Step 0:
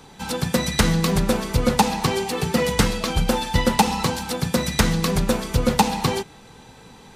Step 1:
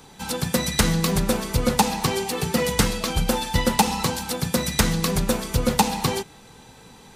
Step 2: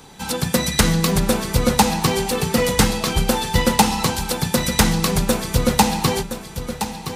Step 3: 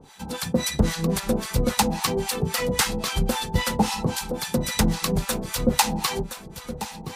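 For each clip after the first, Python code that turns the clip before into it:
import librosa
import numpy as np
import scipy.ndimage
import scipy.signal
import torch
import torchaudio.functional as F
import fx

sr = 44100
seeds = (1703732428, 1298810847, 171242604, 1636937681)

y1 = fx.high_shelf(x, sr, hz=6800.0, db=7.0)
y1 = F.gain(torch.from_numpy(y1), -2.0).numpy()
y2 = fx.echo_feedback(y1, sr, ms=1019, feedback_pct=31, wet_db=-10.0)
y2 = F.gain(torch.from_numpy(y2), 3.5).numpy()
y3 = fx.harmonic_tremolo(y2, sr, hz=3.7, depth_pct=100, crossover_hz=760.0)
y3 = F.gain(torch.from_numpy(y3), -1.0).numpy()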